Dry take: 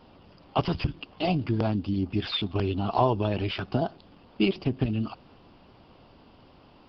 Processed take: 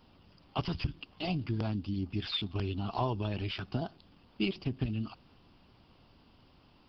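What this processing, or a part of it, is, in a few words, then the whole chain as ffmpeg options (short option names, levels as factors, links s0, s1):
smiley-face EQ: -af "lowshelf=f=120:g=3.5,equalizer=f=560:t=o:w=1.5:g=-5,highshelf=f=5000:g=8.5,volume=0.447"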